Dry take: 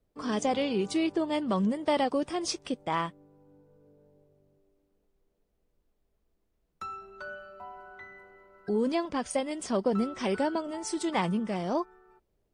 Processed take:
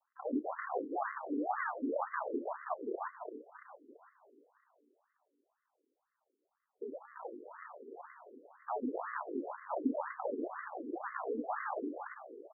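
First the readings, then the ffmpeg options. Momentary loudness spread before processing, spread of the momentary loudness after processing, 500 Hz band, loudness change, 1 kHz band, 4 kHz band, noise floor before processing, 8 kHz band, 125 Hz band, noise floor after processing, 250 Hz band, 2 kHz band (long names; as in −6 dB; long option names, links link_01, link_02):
16 LU, 15 LU, −9.0 dB, −9.5 dB, −5.5 dB, below −40 dB, −76 dBFS, below −40 dB, below −30 dB, below −85 dBFS, −10.5 dB, −4.5 dB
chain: -filter_complex "[0:a]aemphasis=mode=production:type=75fm,acompressor=threshold=-29dB:ratio=6,aresample=11025,acrusher=samples=30:mix=1:aa=0.000001:lfo=1:lforange=18:lforate=1.8,aresample=44100,asplit=6[link_01][link_02][link_03][link_04][link_05][link_06];[link_02]adelay=337,afreqshift=-31,volume=-5dB[link_07];[link_03]adelay=674,afreqshift=-62,volume=-12.5dB[link_08];[link_04]adelay=1011,afreqshift=-93,volume=-20.1dB[link_09];[link_05]adelay=1348,afreqshift=-124,volume=-27.6dB[link_10];[link_06]adelay=1685,afreqshift=-155,volume=-35.1dB[link_11];[link_01][link_07][link_08][link_09][link_10][link_11]amix=inputs=6:normalize=0,afftfilt=real='re*between(b*sr/1024,330*pow(1500/330,0.5+0.5*sin(2*PI*2*pts/sr))/1.41,330*pow(1500/330,0.5+0.5*sin(2*PI*2*pts/sr))*1.41)':imag='im*between(b*sr/1024,330*pow(1500/330,0.5+0.5*sin(2*PI*2*pts/sr))/1.41,330*pow(1500/330,0.5+0.5*sin(2*PI*2*pts/sr))*1.41)':win_size=1024:overlap=0.75,volume=8.5dB"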